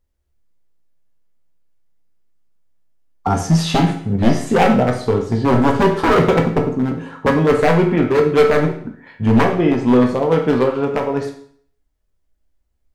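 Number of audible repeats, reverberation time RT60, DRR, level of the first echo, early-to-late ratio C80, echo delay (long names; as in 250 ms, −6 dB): no echo audible, 0.55 s, 2.0 dB, no echo audible, 11.5 dB, no echo audible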